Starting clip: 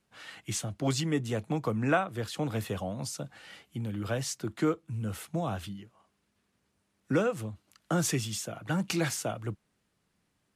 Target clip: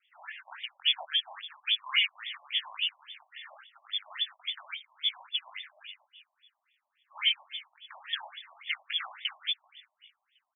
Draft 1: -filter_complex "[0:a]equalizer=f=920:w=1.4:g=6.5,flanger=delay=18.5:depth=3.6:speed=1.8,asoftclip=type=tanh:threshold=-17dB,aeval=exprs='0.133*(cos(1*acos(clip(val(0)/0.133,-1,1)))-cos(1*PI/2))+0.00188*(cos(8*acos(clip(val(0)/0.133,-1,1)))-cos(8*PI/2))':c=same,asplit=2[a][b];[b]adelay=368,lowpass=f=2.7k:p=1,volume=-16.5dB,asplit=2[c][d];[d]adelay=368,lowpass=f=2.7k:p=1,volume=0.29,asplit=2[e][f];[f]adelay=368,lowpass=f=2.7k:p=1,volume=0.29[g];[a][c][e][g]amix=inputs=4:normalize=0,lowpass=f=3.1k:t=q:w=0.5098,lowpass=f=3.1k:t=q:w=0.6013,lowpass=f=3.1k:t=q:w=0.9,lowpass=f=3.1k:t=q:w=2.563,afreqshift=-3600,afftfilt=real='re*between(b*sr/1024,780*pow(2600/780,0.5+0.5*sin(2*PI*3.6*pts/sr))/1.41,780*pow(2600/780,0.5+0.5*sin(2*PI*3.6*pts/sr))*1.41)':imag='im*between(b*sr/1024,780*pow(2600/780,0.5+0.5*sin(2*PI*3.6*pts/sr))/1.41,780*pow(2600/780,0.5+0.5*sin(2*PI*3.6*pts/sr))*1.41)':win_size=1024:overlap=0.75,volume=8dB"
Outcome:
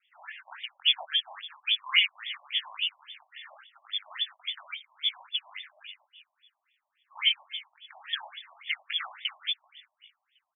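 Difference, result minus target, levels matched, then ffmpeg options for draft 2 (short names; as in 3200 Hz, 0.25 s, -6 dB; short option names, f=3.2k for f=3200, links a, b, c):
soft clip: distortion -10 dB
-filter_complex "[0:a]equalizer=f=920:w=1.4:g=6.5,flanger=delay=18.5:depth=3.6:speed=1.8,asoftclip=type=tanh:threshold=-25.5dB,aeval=exprs='0.133*(cos(1*acos(clip(val(0)/0.133,-1,1)))-cos(1*PI/2))+0.00188*(cos(8*acos(clip(val(0)/0.133,-1,1)))-cos(8*PI/2))':c=same,asplit=2[a][b];[b]adelay=368,lowpass=f=2.7k:p=1,volume=-16.5dB,asplit=2[c][d];[d]adelay=368,lowpass=f=2.7k:p=1,volume=0.29,asplit=2[e][f];[f]adelay=368,lowpass=f=2.7k:p=1,volume=0.29[g];[a][c][e][g]amix=inputs=4:normalize=0,lowpass=f=3.1k:t=q:w=0.5098,lowpass=f=3.1k:t=q:w=0.6013,lowpass=f=3.1k:t=q:w=0.9,lowpass=f=3.1k:t=q:w=2.563,afreqshift=-3600,afftfilt=real='re*between(b*sr/1024,780*pow(2600/780,0.5+0.5*sin(2*PI*3.6*pts/sr))/1.41,780*pow(2600/780,0.5+0.5*sin(2*PI*3.6*pts/sr))*1.41)':imag='im*between(b*sr/1024,780*pow(2600/780,0.5+0.5*sin(2*PI*3.6*pts/sr))/1.41,780*pow(2600/780,0.5+0.5*sin(2*PI*3.6*pts/sr))*1.41)':win_size=1024:overlap=0.75,volume=8dB"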